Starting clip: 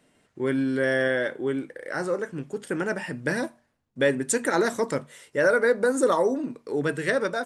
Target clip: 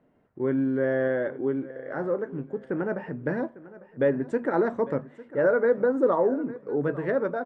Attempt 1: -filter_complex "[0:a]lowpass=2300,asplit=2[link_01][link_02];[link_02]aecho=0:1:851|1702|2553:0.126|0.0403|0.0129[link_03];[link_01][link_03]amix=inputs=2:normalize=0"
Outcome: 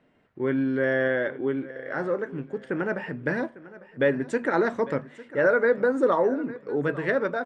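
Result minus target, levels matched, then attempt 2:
2,000 Hz band +6.0 dB
-filter_complex "[0:a]lowpass=1100,asplit=2[link_01][link_02];[link_02]aecho=0:1:851|1702|2553:0.126|0.0403|0.0129[link_03];[link_01][link_03]amix=inputs=2:normalize=0"

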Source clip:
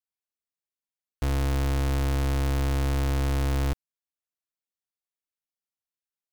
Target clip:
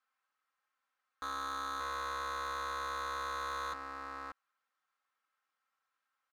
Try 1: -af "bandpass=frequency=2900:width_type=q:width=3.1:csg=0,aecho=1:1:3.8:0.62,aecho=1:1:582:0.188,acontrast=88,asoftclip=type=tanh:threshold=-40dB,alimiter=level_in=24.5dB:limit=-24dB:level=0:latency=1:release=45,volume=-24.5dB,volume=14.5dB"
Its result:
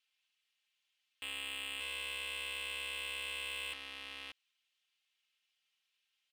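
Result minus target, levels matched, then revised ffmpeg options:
1,000 Hz band −16.5 dB
-af "bandpass=frequency=1300:width_type=q:width=3.1:csg=0,aecho=1:1:3.8:0.62,aecho=1:1:582:0.188,acontrast=88,asoftclip=type=tanh:threshold=-40dB,alimiter=level_in=24.5dB:limit=-24dB:level=0:latency=1:release=45,volume=-24.5dB,volume=14.5dB"

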